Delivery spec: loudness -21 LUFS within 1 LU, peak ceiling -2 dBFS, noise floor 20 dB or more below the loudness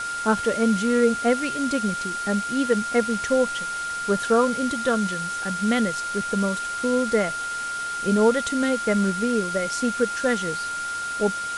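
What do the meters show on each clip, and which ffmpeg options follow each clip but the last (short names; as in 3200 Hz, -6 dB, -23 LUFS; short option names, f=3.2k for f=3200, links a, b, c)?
steady tone 1400 Hz; tone level -27 dBFS; noise floor -30 dBFS; noise floor target -44 dBFS; loudness -23.5 LUFS; peak -8.0 dBFS; loudness target -21.0 LUFS
-> -af "bandreject=f=1.4k:w=30"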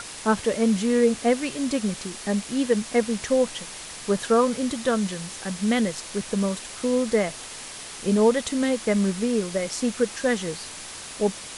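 steady tone none; noise floor -39 dBFS; noise floor target -45 dBFS
-> -af "afftdn=nr=6:nf=-39"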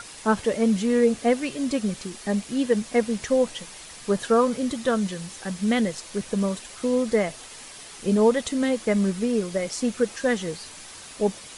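noise floor -43 dBFS; noise floor target -45 dBFS
-> -af "afftdn=nr=6:nf=-43"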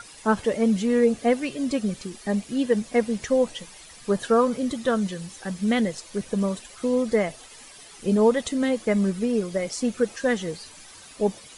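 noise floor -47 dBFS; loudness -24.5 LUFS; peak -9.0 dBFS; loudness target -21.0 LUFS
-> -af "volume=3.5dB"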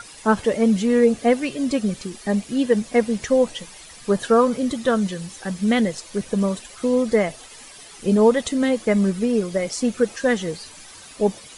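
loudness -21.0 LUFS; peak -5.5 dBFS; noise floor -43 dBFS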